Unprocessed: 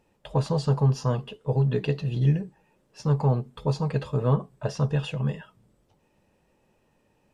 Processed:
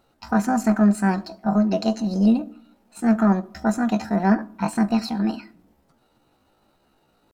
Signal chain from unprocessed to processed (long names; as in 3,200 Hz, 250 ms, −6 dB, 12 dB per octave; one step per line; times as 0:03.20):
pitch shifter +7.5 semitones
on a send: convolution reverb RT60 0.65 s, pre-delay 4 ms, DRR 18 dB
on the sum: level +3.5 dB